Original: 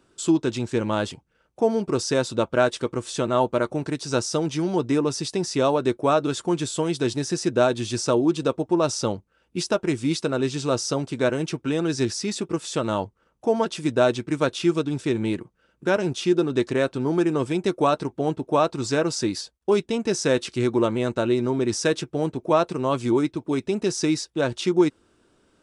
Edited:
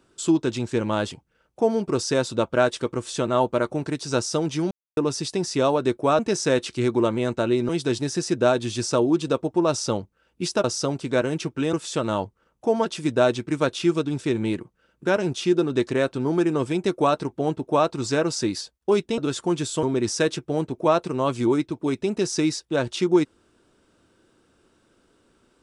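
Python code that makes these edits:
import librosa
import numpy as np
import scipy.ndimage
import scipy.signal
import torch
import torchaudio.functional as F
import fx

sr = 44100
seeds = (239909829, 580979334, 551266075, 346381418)

y = fx.edit(x, sr, fx.silence(start_s=4.71, length_s=0.26),
    fx.swap(start_s=6.19, length_s=0.65, other_s=19.98, other_length_s=1.5),
    fx.cut(start_s=9.79, length_s=0.93),
    fx.cut(start_s=11.81, length_s=0.72), tone=tone)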